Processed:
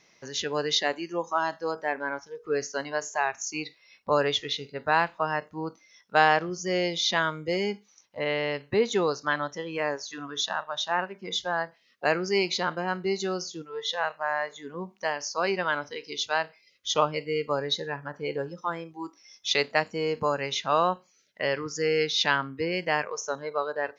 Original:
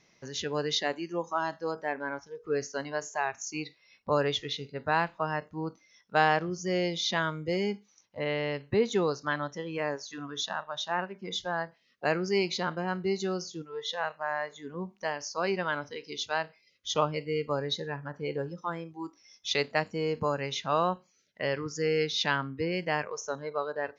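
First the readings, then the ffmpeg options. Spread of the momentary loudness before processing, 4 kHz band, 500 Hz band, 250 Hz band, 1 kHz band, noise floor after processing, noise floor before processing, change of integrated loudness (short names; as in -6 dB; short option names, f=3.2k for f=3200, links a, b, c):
10 LU, +4.5 dB, +2.5 dB, +0.5 dB, +4.0 dB, -64 dBFS, -67 dBFS, +3.5 dB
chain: -af "lowshelf=f=250:g=-9,volume=4.5dB"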